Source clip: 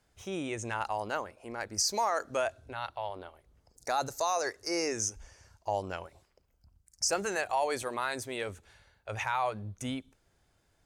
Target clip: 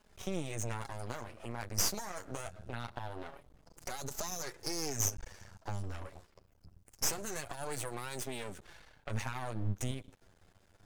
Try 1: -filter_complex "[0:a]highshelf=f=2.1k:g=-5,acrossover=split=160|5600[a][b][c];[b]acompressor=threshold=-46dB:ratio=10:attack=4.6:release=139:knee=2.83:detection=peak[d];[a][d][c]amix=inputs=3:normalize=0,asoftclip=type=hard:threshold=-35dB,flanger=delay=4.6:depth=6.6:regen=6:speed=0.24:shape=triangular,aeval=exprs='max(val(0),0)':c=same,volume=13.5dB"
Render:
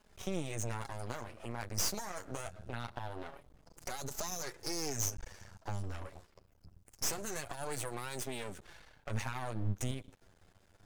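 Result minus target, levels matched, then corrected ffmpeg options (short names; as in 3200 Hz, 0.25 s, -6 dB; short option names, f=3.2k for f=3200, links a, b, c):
hard clip: distortion +20 dB
-filter_complex "[0:a]highshelf=f=2.1k:g=-5,acrossover=split=160|5600[a][b][c];[b]acompressor=threshold=-46dB:ratio=10:attack=4.6:release=139:knee=2.83:detection=peak[d];[a][d][c]amix=inputs=3:normalize=0,asoftclip=type=hard:threshold=-28dB,flanger=delay=4.6:depth=6.6:regen=6:speed=0.24:shape=triangular,aeval=exprs='max(val(0),0)':c=same,volume=13.5dB"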